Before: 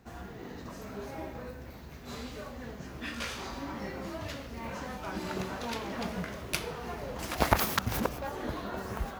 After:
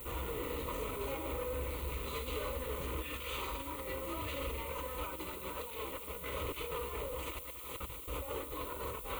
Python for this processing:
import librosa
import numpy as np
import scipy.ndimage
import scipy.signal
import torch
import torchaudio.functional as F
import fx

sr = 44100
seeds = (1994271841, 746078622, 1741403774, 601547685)

y = scipy.signal.sosfilt(scipy.signal.butter(2, 9000.0, 'lowpass', fs=sr, output='sos'), x)
y = y + 0.44 * np.pad(y, (int(4.0 * sr / 1000.0), 0))[:len(y)]
y = fx.over_compress(y, sr, threshold_db=-41.0, ratio=-0.5)
y = 10.0 ** (-39.5 / 20.0) * np.tanh(y / 10.0 ** (-39.5 / 20.0))
y = fx.dmg_noise_colour(y, sr, seeds[0], colour='blue', level_db=-55.0)
y = fx.fixed_phaser(y, sr, hz=1100.0, stages=8)
y = y + 10.0 ** (-14.5 / 20.0) * np.pad(y, (int(282 * sr / 1000.0), 0))[:len(y)]
y = y * librosa.db_to_amplitude(7.5)